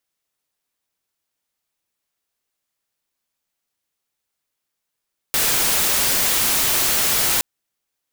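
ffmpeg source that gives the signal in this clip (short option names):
-f lavfi -i "anoisesrc=c=white:a=0.206:d=2.07:r=44100:seed=1"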